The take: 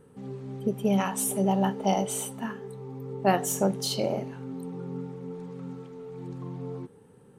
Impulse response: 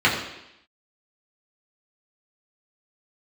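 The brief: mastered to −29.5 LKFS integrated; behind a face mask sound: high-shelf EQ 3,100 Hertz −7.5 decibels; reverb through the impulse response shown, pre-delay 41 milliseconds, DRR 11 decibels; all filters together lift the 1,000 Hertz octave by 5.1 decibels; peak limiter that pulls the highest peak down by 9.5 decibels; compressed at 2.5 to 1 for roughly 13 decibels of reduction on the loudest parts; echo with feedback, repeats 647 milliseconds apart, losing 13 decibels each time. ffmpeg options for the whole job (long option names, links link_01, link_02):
-filter_complex "[0:a]equalizer=frequency=1000:width_type=o:gain=8,acompressor=threshold=-34dB:ratio=2.5,alimiter=level_in=3.5dB:limit=-24dB:level=0:latency=1,volume=-3.5dB,aecho=1:1:647|1294|1941:0.224|0.0493|0.0108,asplit=2[link_01][link_02];[1:a]atrim=start_sample=2205,adelay=41[link_03];[link_02][link_03]afir=irnorm=-1:irlink=0,volume=-31.5dB[link_04];[link_01][link_04]amix=inputs=2:normalize=0,highshelf=frequency=3100:gain=-7.5,volume=9dB"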